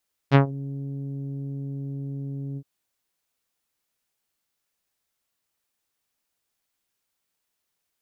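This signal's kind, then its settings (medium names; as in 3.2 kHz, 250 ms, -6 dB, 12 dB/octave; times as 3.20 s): synth note saw C#3 24 dB/octave, low-pass 350 Hz, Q 0.7, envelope 4 oct, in 0.21 s, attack 41 ms, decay 0.11 s, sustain -19 dB, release 0.06 s, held 2.26 s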